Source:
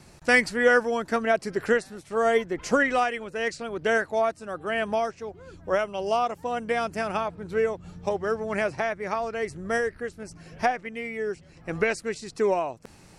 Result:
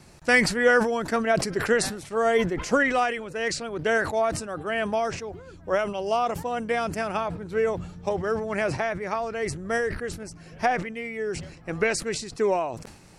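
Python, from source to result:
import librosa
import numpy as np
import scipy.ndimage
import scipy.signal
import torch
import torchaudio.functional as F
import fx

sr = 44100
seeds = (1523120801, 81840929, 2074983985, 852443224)

y = fx.sustainer(x, sr, db_per_s=76.0)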